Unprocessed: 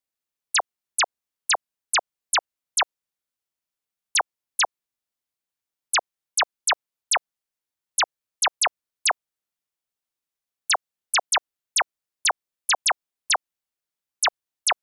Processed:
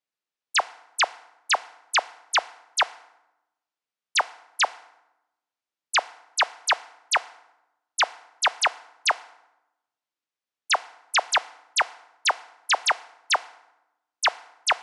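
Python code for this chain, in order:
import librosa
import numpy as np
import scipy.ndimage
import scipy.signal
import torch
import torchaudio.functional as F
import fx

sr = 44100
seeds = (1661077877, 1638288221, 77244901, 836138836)

y = fx.highpass(x, sr, hz=310.0, slope=6)
y = fx.air_absorb(y, sr, metres=92.0)
y = fx.rev_fdn(y, sr, rt60_s=0.94, lf_ratio=1.45, hf_ratio=0.65, size_ms=20.0, drr_db=16.5)
y = F.gain(torch.from_numpy(y), 2.0).numpy()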